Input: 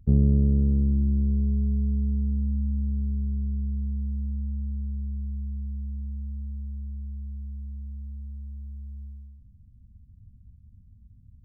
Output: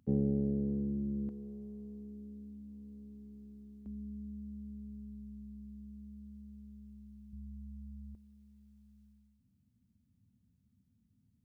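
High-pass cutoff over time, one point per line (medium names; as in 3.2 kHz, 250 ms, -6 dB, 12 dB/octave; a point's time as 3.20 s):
280 Hz
from 1.29 s 480 Hz
from 3.86 s 250 Hz
from 7.33 s 140 Hz
from 8.15 s 320 Hz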